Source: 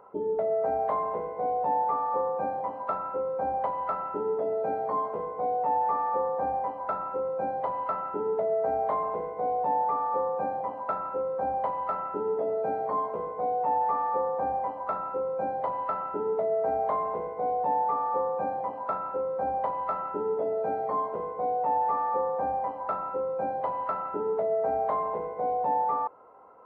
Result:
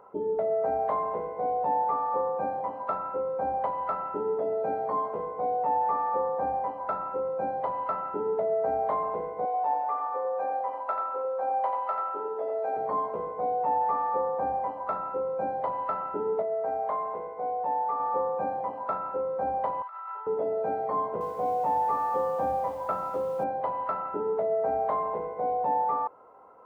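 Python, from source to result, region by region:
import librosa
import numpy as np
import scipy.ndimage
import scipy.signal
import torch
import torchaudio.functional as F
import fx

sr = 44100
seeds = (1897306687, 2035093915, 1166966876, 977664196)

y = fx.chain(x, sr, fx.highpass(hz=540.0, slope=12),
    fx.echo_single(ms=88, db=-6.0), at=(9.45, 12.77))
y = fx.chain(y, sr, fx.lowpass(hz=2600.0, slope=6),
    fx.low_shelf(hz=370.0, db=-9.5), at=(16.42, 18.0))
y = fx.chain(y, sr, fx.highpass(hz=990.0, slope=24),
    fx.high_shelf(hz=2200.0, db=-5.0),
    fx.over_compress(threshold_db=-39.0, ratio=-1.0), at=(19.82, 20.27))
y = fx.chain(y, sr, fx.highpass(hz=70.0, slope=24),
    fx.low_shelf(hz=170.0, db=7.5),
    fx.echo_crushed(ms=248, feedback_pct=35, bits=8, wet_db=-12), at=(20.96, 23.44))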